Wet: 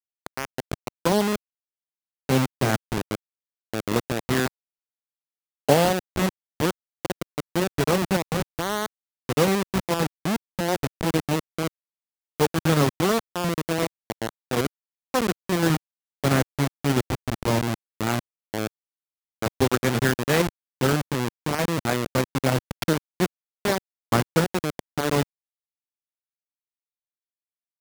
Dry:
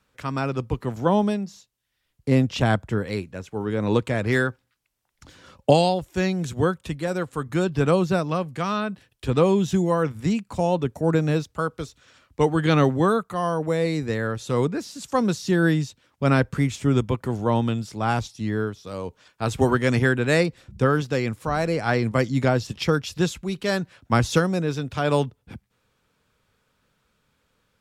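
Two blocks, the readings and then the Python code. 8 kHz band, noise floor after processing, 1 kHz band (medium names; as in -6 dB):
+5.5 dB, under -85 dBFS, -1.5 dB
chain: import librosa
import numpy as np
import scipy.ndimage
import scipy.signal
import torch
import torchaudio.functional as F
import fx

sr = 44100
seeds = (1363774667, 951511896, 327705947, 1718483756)

y = fx.delta_hold(x, sr, step_db=-15.5)
y = fx.highpass(y, sr, hz=140.0, slope=6)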